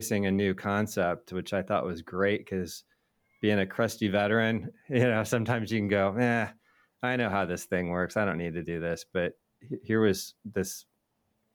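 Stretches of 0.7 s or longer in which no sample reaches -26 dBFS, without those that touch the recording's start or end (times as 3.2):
2.63–3.44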